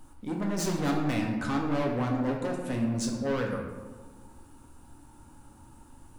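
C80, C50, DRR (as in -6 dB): 6.0 dB, 4.0 dB, 0.0 dB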